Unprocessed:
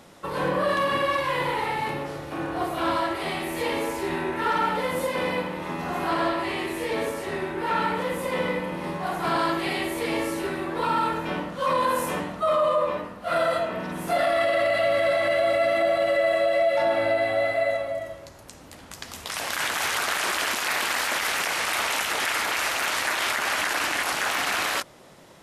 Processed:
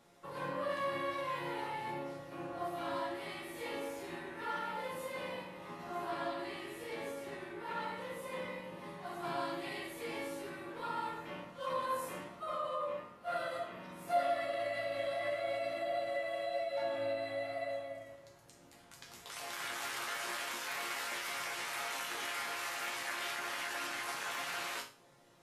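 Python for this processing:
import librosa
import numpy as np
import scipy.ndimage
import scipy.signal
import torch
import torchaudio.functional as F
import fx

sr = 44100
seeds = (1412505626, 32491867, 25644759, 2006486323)

y = fx.resonator_bank(x, sr, root=46, chord='minor', decay_s=0.37)
y = y * librosa.db_to_amplitude(1.0)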